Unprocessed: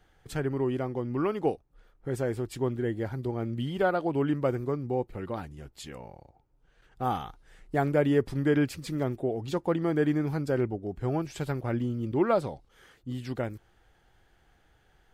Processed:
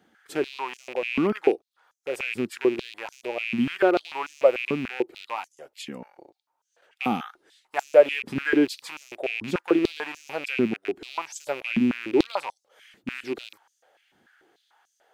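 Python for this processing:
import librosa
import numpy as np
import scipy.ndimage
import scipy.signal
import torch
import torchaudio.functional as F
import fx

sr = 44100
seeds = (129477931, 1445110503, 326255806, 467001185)

y = fx.rattle_buzz(x, sr, strikes_db=-35.0, level_db=-28.0)
y = fx.filter_held_highpass(y, sr, hz=6.8, low_hz=220.0, high_hz=6300.0)
y = y * 10.0 ** (1.0 / 20.0)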